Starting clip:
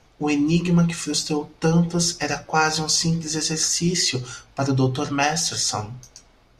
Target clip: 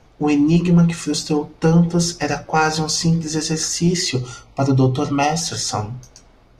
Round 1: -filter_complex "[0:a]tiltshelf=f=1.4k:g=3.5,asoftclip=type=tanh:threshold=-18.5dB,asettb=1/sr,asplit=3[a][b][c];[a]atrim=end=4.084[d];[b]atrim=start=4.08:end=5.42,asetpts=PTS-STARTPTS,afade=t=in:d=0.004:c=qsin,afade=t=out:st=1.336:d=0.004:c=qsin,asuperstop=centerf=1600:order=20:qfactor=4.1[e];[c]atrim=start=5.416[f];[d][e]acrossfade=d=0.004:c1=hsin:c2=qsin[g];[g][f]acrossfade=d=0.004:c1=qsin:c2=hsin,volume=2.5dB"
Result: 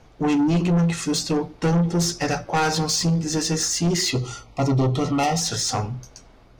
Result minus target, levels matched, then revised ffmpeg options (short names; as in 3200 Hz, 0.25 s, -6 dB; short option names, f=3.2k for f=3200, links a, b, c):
soft clip: distortion +14 dB
-filter_complex "[0:a]tiltshelf=f=1.4k:g=3.5,asoftclip=type=tanh:threshold=-7dB,asettb=1/sr,asplit=3[a][b][c];[a]atrim=end=4.084[d];[b]atrim=start=4.08:end=5.42,asetpts=PTS-STARTPTS,afade=t=in:d=0.004:c=qsin,afade=t=out:st=1.336:d=0.004:c=qsin,asuperstop=centerf=1600:order=20:qfactor=4.1[e];[c]atrim=start=5.416[f];[d][e]acrossfade=d=0.004:c1=hsin:c2=qsin[g];[g][f]acrossfade=d=0.004:c1=qsin:c2=hsin,volume=2.5dB"